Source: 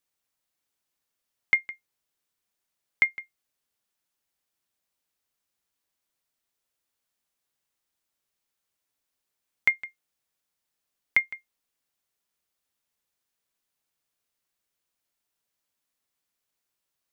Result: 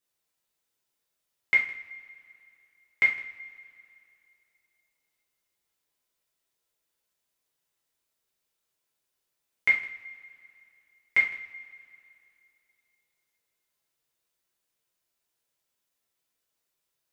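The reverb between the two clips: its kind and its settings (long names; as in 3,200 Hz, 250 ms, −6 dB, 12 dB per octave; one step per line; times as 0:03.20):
coupled-rooms reverb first 0.4 s, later 2.7 s, from −22 dB, DRR −5 dB
level −5 dB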